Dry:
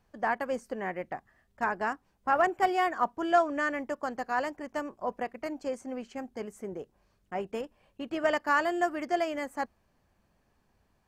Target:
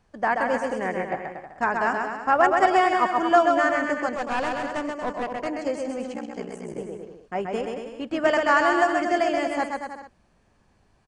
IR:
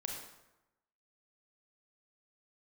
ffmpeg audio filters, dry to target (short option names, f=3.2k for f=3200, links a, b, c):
-filter_complex "[0:a]aecho=1:1:130|234|317.2|383.8|437:0.631|0.398|0.251|0.158|0.1,asettb=1/sr,asplit=3[a][b][c];[a]atrim=end=4.154[d];[b]atrim=start=4.15:end=5.47,asetpts=PTS-STARTPTS,afade=t=in:d=0.004:c=qsin,afade=t=out:st=1.316:d=0.004:c=qsin,aeval=exprs='clip(val(0),-1,0.0211)':c=same[e];[c]atrim=start=5.466[f];[d][e]acrossfade=d=0.004:c1=hsin:c2=qsin[g];[g][f]acrossfade=d=0.004:c1=qsin:c2=hsin,aresample=22050,aresample=44100,asettb=1/sr,asplit=3[h][i][j];[h]atrim=end=6.134[k];[i]atrim=start=6.13:end=6.78,asetpts=PTS-STARTPTS,afade=t=in:d=0.004:c=qsin,afade=t=out:st=0.646:d=0.004:c=qsin,aeval=exprs='val(0)*sin(2*PI*31*n/s)':c=same[l];[j]atrim=start=6.776[m];[k][l]acrossfade=d=0.004:c1=hsin:c2=qsin[n];[n][m]acrossfade=d=0.004:c1=qsin:c2=hsin,volume=5.5dB"